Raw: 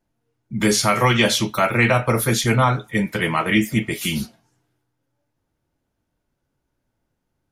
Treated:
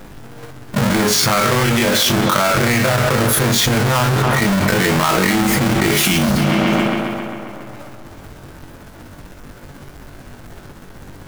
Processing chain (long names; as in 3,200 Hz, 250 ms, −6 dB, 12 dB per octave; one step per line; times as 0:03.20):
each half-wave held at its own peak
parametric band 1,500 Hz +3.5 dB 0.63 octaves
mains-hum notches 50/100/150 Hz
time stretch by overlap-add 1.5×, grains 126 ms
tape delay 136 ms, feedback 76%, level −20 dB, low-pass 4,200 Hz
envelope flattener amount 100%
level −6 dB